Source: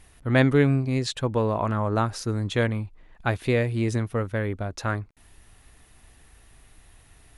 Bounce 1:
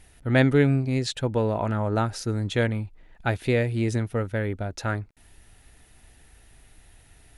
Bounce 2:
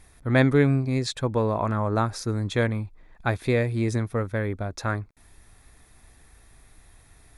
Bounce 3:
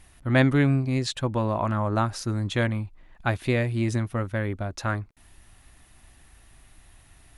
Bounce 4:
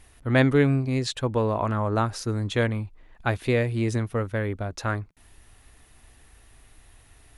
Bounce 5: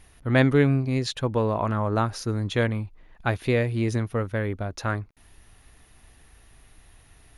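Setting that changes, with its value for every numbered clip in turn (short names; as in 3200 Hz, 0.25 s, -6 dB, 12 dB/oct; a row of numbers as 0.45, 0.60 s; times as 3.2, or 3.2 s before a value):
notch, frequency: 1100, 2900, 450, 170, 7800 Hz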